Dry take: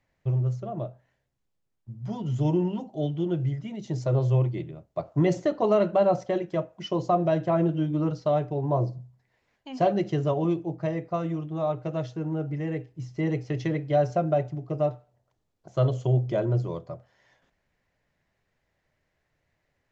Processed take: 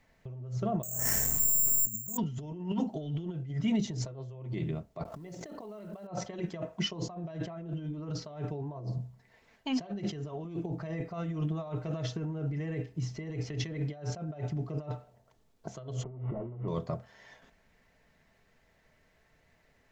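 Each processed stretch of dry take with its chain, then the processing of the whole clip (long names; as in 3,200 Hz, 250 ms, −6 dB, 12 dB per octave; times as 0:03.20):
0:00.83–0:02.17: high-frequency loss of the air 410 metres + bad sample-rate conversion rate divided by 6×, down none, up zero stuff + envelope flattener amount 70%
0:05.05–0:06.07: floating-point word with a short mantissa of 4 bits + envelope flattener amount 100%
0:16.03–0:16.68: linear delta modulator 16 kbit/s, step −40.5 dBFS + Savitzky-Golay smoothing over 65 samples
whole clip: compressor whose output falls as the input rises −35 dBFS, ratio −1; comb filter 4.5 ms, depth 36%; dynamic equaliser 560 Hz, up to −5 dB, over −45 dBFS, Q 1.2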